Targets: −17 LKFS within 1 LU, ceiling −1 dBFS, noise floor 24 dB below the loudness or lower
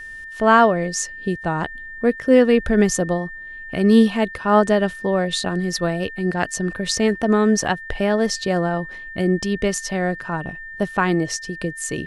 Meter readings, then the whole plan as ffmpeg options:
interfering tone 1,800 Hz; level of the tone −33 dBFS; integrated loudness −20.0 LKFS; sample peak −2.5 dBFS; target loudness −17.0 LKFS
→ -af "bandreject=frequency=1800:width=30"
-af "volume=3dB,alimiter=limit=-1dB:level=0:latency=1"

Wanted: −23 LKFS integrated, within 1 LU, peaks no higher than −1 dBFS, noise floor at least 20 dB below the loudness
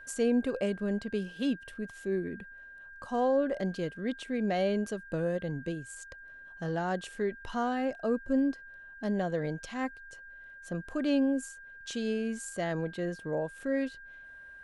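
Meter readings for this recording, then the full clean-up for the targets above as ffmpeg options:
interfering tone 1,600 Hz; level of the tone −47 dBFS; integrated loudness −32.5 LKFS; sample peak −17.5 dBFS; target loudness −23.0 LKFS
→ -af "bandreject=frequency=1600:width=30"
-af "volume=9.5dB"

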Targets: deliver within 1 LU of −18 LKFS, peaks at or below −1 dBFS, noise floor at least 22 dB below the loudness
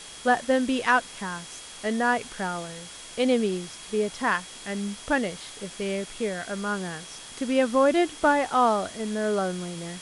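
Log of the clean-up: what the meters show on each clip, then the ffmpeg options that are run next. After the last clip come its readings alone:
interfering tone 3,300 Hz; level of the tone −48 dBFS; background noise floor −43 dBFS; target noise floor −48 dBFS; integrated loudness −26.0 LKFS; sample peak −9.0 dBFS; target loudness −18.0 LKFS
→ -af "bandreject=frequency=3300:width=30"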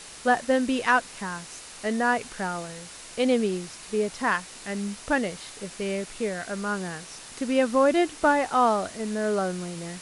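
interfering tone none found; background noise floor −44 dBFS; target noise floor −48 dBFS
→ -af "afftdn=noise_reduction=6:noise_floor=-44"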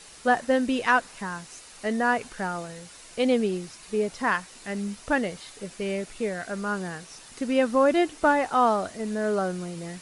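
background noise floor −48 dBFS; target noise floor −49 dBFS
→ -af "afftdn=noise_reduction=6:noise_floor=-48"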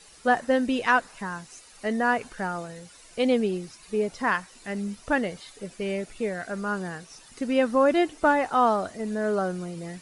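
background noise floor −52 dBFS; integrated loudness −26.5 LKFS; sample peak −8.5 dBFS; target loudness −18.0 LKFS
→ -af "volume=8.5dB,alimiter=limit=-1dB:level=0:latency=1"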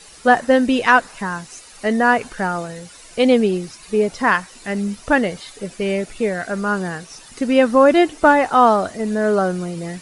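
integrated loudness −18.0 LKFS; sample peak −1.0 dBFS; background noise floor −43 dBFS

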